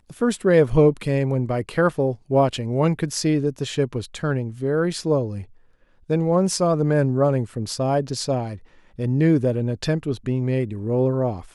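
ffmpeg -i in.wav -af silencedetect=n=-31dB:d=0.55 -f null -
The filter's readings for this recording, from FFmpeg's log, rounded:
silence_start: 5.43
silence_end: 6.10 | silence_duration: 0.67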